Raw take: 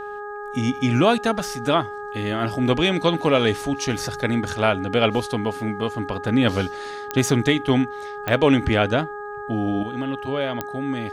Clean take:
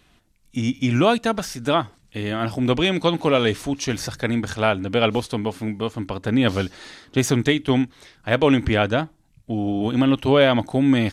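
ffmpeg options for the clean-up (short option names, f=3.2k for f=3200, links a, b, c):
-af "adeclick=t=4,bandreject=f=413.4:t=h:w=4,bandreject=f=826.8:t=h:w=4,bandreject=f=1.2402k:t=h:w=4,bandreject=f=1.6536k:t=h:w=4,asetnsamples=n=441:p=0,asendcmd='9.83 volume volume 10dB',volume=0dB"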